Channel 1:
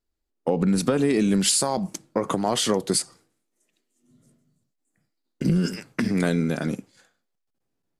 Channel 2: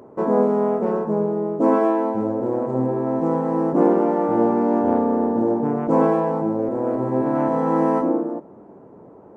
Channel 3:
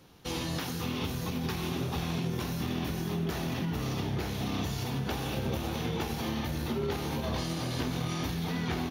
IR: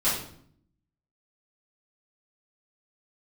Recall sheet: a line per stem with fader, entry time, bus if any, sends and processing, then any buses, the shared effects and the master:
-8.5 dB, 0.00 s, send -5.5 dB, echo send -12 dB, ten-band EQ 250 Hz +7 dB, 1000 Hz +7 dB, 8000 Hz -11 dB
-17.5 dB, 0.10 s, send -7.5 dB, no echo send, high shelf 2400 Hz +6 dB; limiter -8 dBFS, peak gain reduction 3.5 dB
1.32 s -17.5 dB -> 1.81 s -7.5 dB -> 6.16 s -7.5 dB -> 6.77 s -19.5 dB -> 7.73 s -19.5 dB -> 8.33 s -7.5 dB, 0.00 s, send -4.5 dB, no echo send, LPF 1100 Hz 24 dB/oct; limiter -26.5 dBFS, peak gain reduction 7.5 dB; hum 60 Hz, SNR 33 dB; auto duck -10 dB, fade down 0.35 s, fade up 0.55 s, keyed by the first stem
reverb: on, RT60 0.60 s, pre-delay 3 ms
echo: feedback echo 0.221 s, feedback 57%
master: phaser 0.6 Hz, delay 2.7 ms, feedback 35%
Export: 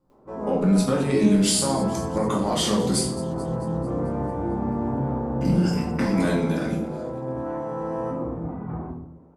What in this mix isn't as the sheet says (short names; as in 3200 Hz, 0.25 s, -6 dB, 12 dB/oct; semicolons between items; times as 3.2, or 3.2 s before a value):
stem 1: missing ten-band EQ 250 Hz +7 dB, 1000 Hz +7 dB, 8000 Hz -11 dB; stem 3: missing limiter -26.5 dBFS, peak gain reduction 7.5 dB; master: missing phaser 0.6 Hz, delay 2.7 ms, feedback 35%